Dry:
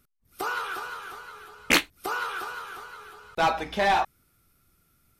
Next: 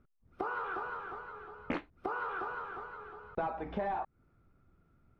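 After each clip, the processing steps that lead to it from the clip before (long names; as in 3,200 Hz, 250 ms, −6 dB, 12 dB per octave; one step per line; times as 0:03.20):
low-pass filter 1,100 Hz 12 dB per octave
downward compressor 10 to 1, threshold −34 dBFS, peak gain reduction 14 dB
level +1.5 dB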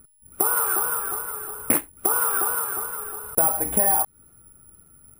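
bad sample-rate conversion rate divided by 4×, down none, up zero stuff
level +9 dB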